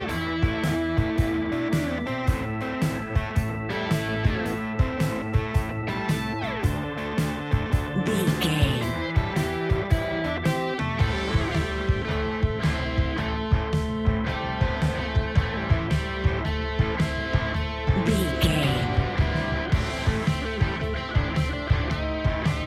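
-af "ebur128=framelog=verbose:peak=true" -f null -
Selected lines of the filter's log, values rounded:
Integrated loudness:
  I:         -25.6 LUFS
  Threshold: -35.6 LUFS
Loudness range:
  LRA:         1.9 LU
  Threshold: -45.6 LUFS
  LRA low:   -26.5 LUFS
  LRA high:  -24.6 LUFS
True peak:
  Peak:       -8.3 dBFS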